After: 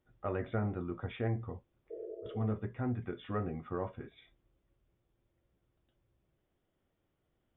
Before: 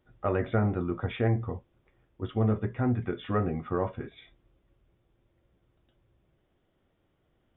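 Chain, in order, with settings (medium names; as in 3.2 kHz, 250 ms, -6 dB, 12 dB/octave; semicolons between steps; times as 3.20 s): 1.22–2.26 s: slow attack 421 ms; 1.93–2.41 s: spectral replace 330–660 Hz after; trim -8 dB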